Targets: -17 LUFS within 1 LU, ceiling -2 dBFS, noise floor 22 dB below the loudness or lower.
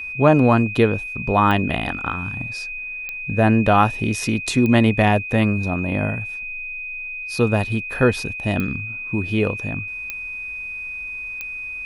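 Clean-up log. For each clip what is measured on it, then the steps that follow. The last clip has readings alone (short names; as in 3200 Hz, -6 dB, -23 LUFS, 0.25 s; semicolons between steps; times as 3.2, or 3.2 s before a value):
clicks 6; steady tone 2500 Hz; tone level -28 dBFS; loudness -21.0 LUFS; peak -1.5 dBFS; loudness target -17.0 LUFS
-> de-click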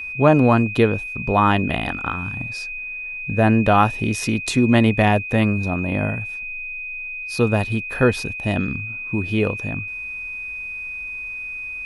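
clicks 0; steady tone 2500 Hz; tone level -28 dBFS
-> notch 2500 Hz, Q 30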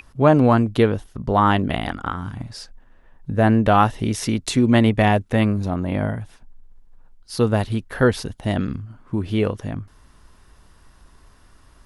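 steady tone none; loudness -20.0 LUFS; peak -1.0 dBFS; loudness target -17.0 LUFS
-> gain +3 dB; limiter -2 dBFS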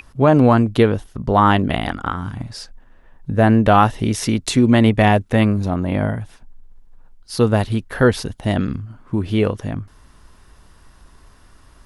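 loudness -17.5 LUFS; peak -2.0 dBFS; noise floor -49 dBFS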